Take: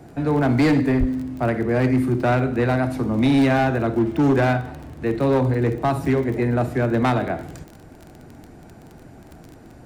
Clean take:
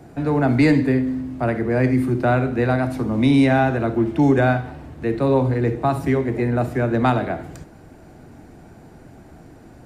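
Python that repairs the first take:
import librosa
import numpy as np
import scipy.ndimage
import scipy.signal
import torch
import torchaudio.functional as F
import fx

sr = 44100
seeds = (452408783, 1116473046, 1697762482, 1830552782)

y = fx.fix_declip(x, sr, threshold_db=-13.0)
y = fx.fix_declick_ar(y, sr, threshold=6.5)
y = fx.highpass(y, sr, hz=140.0, slope=24, at=(0.99, 1.11), fade=0.02)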